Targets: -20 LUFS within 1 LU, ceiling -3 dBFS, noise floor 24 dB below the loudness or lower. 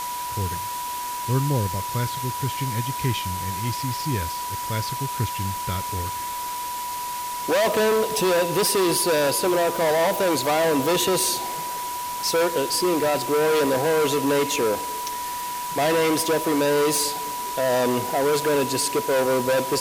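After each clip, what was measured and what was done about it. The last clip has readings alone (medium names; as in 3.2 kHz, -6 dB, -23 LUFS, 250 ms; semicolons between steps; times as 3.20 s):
steady tone 980 Hz; tone level -28 dBFS; noise floor -30 dBFS; noise floor target -47 dBFS; loudness -23.0 LUFS; peak level -10.0 dBFS; loudness target -20.0 LUFS
-> band-stop 980 Hz, Q 30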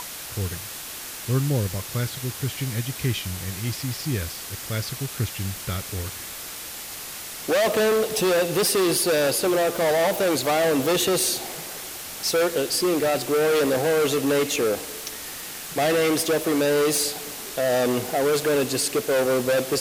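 steady tone not found; noise floor -36 dBFS; noise floor target -48 dBFS
-> noise print and reduce 12 dB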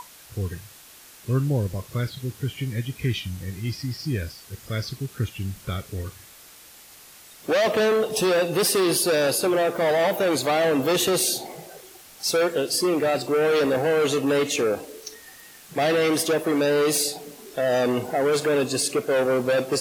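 noise floor -48 dBFS; loudness -23.5 LUFS; peak level -12.0 dBFS; loudness target -20.0 LUFS
-> trim +3.5 dB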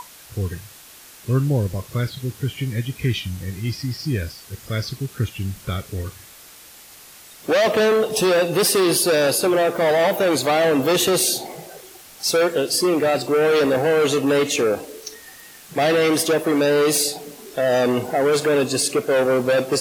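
loudness -20.0 LUFS; peak level -8.5 dBFS; noise floor -44 dBFS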